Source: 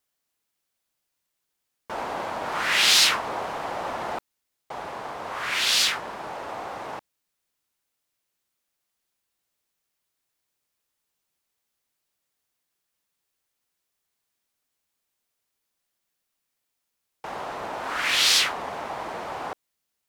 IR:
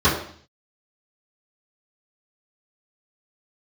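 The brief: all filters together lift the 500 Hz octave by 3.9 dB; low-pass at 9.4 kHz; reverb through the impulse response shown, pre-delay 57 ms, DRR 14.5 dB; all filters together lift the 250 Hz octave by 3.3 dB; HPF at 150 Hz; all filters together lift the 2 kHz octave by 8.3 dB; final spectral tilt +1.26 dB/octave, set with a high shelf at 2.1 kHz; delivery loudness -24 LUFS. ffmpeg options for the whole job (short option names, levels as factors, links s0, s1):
-filter_complex "[0:a]highpass=150,lowpass=9400,equalizer=f=250:t=o:g=3.5,equalizer=f=500:t=o:g=3.5,equalizer=f=2000:t=o:g=7,highshelf=f=2100:g=5,asplit=2[s0][s1];[1:a]atrim=start_sample=2205,adelay=57[s2];[s1][s2]afir=irnorm=-1:irlink=0,volume=0.0178[s3];[s0][s3]amix=inputs=2:normalize=0,volume=0.422"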